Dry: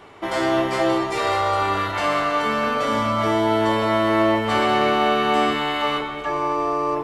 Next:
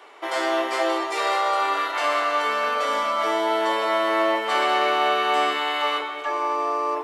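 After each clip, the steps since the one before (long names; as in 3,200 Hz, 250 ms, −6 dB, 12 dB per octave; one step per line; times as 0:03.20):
Bessel high-pass filter 520 Hz, order 8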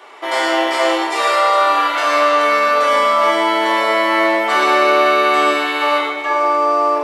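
convolution reverb, pre-delay 3 ms, DRR 0.5 dB
level +5 dB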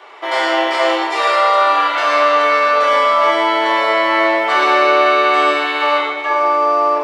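three-way crossover with the lows and the highs turned down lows −21 dB, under 260 Hz, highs −12 dB, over 5,900 Hz
level +1 dB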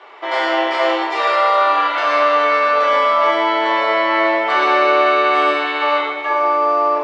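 high-frequency loss of the air 98 metres
level −1 dB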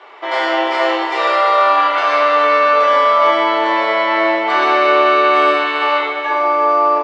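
single-tap delay 340 ms −10.5 dB
level +1 dB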